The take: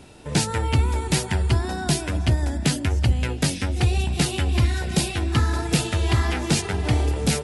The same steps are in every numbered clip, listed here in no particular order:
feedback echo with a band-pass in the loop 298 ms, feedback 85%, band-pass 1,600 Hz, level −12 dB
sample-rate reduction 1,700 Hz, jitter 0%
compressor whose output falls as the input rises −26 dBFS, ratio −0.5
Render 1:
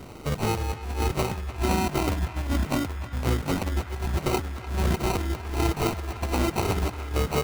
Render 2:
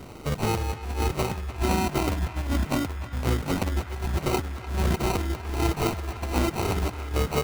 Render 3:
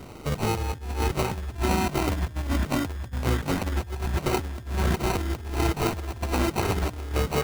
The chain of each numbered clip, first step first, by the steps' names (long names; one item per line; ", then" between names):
sample-rate reduction, then compressor whose output falls as the input rises, then feedback echo with a band-pass in the loop
compressor whose output falls as the input rises, then sample-rate reduction, then feedback echo with a band-pass in the loop
sample-rate reduction, then feedback echo with a band-pass in the loop, then compressor whose output falls as the input rises